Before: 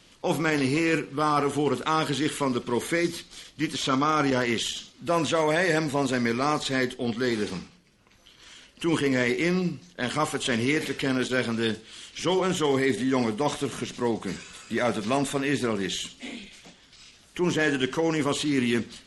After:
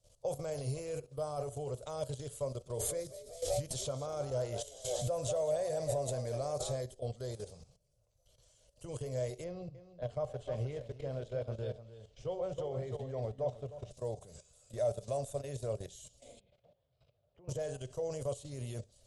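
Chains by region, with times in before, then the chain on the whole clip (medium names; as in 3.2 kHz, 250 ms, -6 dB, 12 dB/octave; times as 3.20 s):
2.70–6.81 s: frequency-shifting echo 192 ms, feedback 45%, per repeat +79 Hz, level -11 dB + swell ahead of each attack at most 25 dB/s
9.44–13.91 s: low-pass 2.9 kHz + delay 306 ms -7 dB
16.40–17.49 s: band-pass 100–6000 Hz + distance through air 440 m + three bands compressed up and down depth 40%
whole clip: level held to a coarse grid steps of 14 dB; FFT filter 130 Hz 0 dB, 190 Hz -20 dB, 310 Hz -24 dB, 590 Hz +3 dB, 860 Hz -16 dB, 1.9 kHz -28 dB, 7.7 kHz -4 dB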